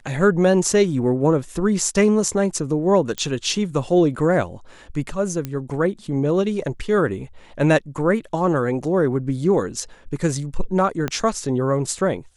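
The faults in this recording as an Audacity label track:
3.180000	3.180000	pop -11 dBFS
5.450000	5.450000	pop -13 dBFS
11.080000	11.080000	pop -10 dBFS

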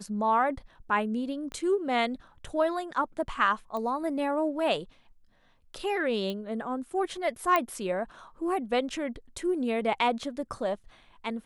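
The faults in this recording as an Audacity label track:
1.520000	1.520000	pop -26 dBFS
3.770000	3.770000	pop -23 dBFS
6.300000	6.300000	pop -22 dBFS
7.560000	7.560000	pop -12 dBFS

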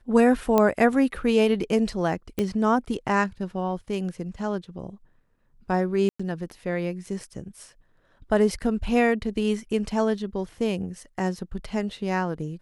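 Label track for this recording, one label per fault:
0.580000	0.580000	pop -8 dBFS
2.390000	2.390000	pop -13 dBFS
6.090000	6.200000	gap 0.105 s

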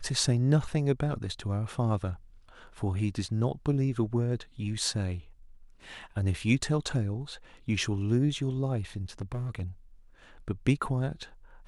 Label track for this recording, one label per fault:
9.210000	9.620000	clipped -30 dBFS

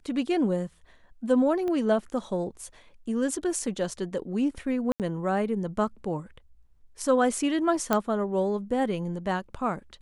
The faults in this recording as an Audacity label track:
1.680000	1.680000	pop -21 dBFS
4.920000	5.000000	gap 78 ms
7.930000	7.930000	pop -9 dBFS

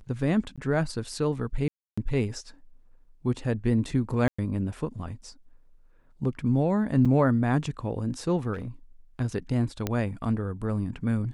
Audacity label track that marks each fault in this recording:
0.560000	0.580000	gap 16 ms
1.680000	1.980000	gap 0.295 s
4.280000	4.380000	gap 0.105 s
7.050000	7.060000	gap 5.3 ms
8.530000	8.680000	clipped -30 dBFS
9.870000	9.870000	pop -13 dBFS

